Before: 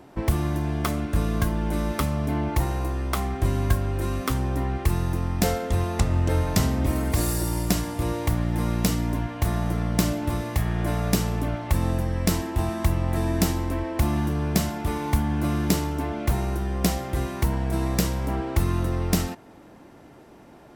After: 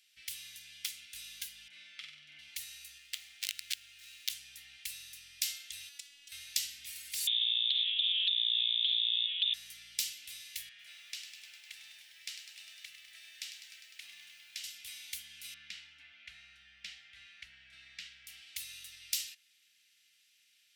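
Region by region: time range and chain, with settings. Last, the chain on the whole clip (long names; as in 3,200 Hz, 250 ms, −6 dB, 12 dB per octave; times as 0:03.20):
0:01.68–0:02.39: band-pass filter 150–2,400 Hz + flutter between parallel walls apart 8.1 metres, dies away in 0.63 s
0:02.98–0:04.30: running median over 9 samples + wrap-around overflow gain 15.5 dB + low-shelf EQ 290 Hz −6 dB
0:05.89–0:06.32: high-pass filter 120 Hz 24 dB per octave + output level in coarse steps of 16 dB + phases set to zero 284 Hz
0:07.27–0:09.54: voice inversion scrambler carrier 3,600 Hz + downward compressor 10 to 1, threshold −24 dBFS + highs frequency-modulated by the lows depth 0.14 ms
0:10.69–0:14.64: resonant band-pass 1,100 Hz, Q 0.59 + feedback echo at a low word length 101 ms, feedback 80%, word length 9 bits, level −9 dB
0:15.54–0:18.27: low-pass filter 2,200 Hz + parametric band 1,500 Hz +4 dB 0.94 octaves
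whole clip: inverse Chebyshev high-pass filter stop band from 1,100 Hz, stop band 50 dB; high-shelf EQ 4,800 Hz −7.5 dB; level +2 dB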